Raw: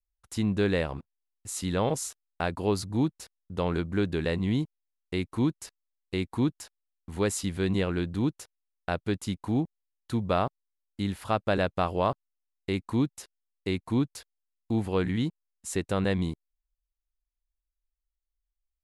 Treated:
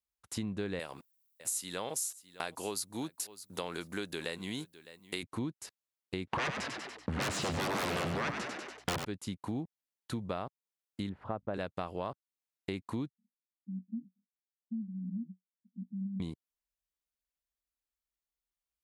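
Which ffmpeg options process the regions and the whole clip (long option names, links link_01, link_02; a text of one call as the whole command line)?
ffmpeg -i in.wav -filter_complex "[0:a]asettb=1/sr,asplit=3[link_01][link_02][link_03];[link_01]atrim=end=0.794[link_04];[link_02]atrim=start=0.79:end=5.23,asetpts=PTS-STARTPTS,afade=type=in:duration=0.004:curve=qsin,afade=type=out:start_time=4.436:duration=0.004:curve=qsin,aemphasis=mode=production:type=riaa,aecho=1:1:608:0.0708,atrim=end_sample=195804[link_05];[link_03]atrim=start=5.226[link_06];[link_04][link_05]acrossfade=duration=0.004:curve1=hsin:curve2=qsin[link_07];[link_07][link_06]acrossfade=duration=0.004:curve1=qsin:curve2=hsin,asettb=1/sr,asplit=3[link_08][link_09][link_10];[link_08]atrim=end=6.274[link_11];[link_09]atrim=start=6.27:end=9.05,asetpts=PTS-STARTPTS,afade=type=in:duration=0.004:curve=qsin,afade=type=out:start_time=2.776:duration=0.004:curve=qsin,lowpass=2900,aeval=exprs='0.178*sin(PI/2*10*val(0)/0.178)':channel_layout=same,asplit=6[link_12][link_13][link_14][link_15][link_16][link_17];[link_13]adelay=96,afreqshift=59,volume=-7.5dB[link_18];[link_14]adelay=192,afreqshift=118,volume=-14.1dB[link_19];[link_15]adelay=288,afreqshift=177,volume=-20.6dB[link_20];[link_16]adelay=384,afreqshift=236,volume=-27.2dB[link_21];[link_17]adelay=480,afreqshift=295,volume=-33.7dB[link_22];[link_12][link_18][link_19][link_20][link_21][link_22]amix=inputs=6:normalize=0,atrim=end_sample=122598[link_23];[link_10]atrim=start=9.046[link_24];[link_11][link_23]acrossfade=duration=0.004:curve1=hsin:curve2=qsin[link_25];[link_25][link_24]acrossfade=duration=0.004:curve1=qsin:curve2=hsin,asettb=1/sr,asplit=3[link_26][link_27][link_28];[link_26]atrim=end=11.094[link_29];[link_27]atrim=start=11.09:end=11.54,asetpts=PTS-STARTPTS,afade=type=in:duration=0.004:curve=qsin,afade=type=out:start_time=0.446:duration=0.004:curve=qsin,lowpass=1100,aeval=exprs='val(0)+0.000891*(sin(2*PI*50*n/s)+sin(2*PI*2*50*n/s)/2+sin(2*PI*3*50*n/s)/3+sin(2*PI*4*50*n/s)/4+sin(2*PI*5*50*n/s)/5)':channel_layout=same[link_30];[link_28]atrim=start=11.536[link_31];[link_29][link_30]acrossfade=duration=0.004:curve1=hsin:curve2=qsin[link_32];[link_32][link_31]acrossfade=duration=0.004:curve1=qsin:curve2=hsin,asettb=1/sr,asplit=3[link_33][link_34][link_35];[link_33]atrim=end=13.104[link_36];[link_34]atrim=start=13.1:end=16.2,asetpts=PTS-STARTPTS,afade=type=in:duration=0.004:curve=qsin,afade=type=out:start_time=3.096:duration=0.004:curve=qsin,asoftclip=type=hard:threshold=-26.5dB,asuperpass=centerf=210:order=8:qfactor=3.7[link_37];[link_35]atrim=start=16.196[link_38];[link_36][link_37]acrossfade=duration=0.004:curve1=hsin:curve2=qsin[link_39];[link_39][link_38]acrossfade=duration=0.004:curve1=qsin:curve2=hsin,highpass=98,acompressor=threshold=-35dB:ratio=4" out.wav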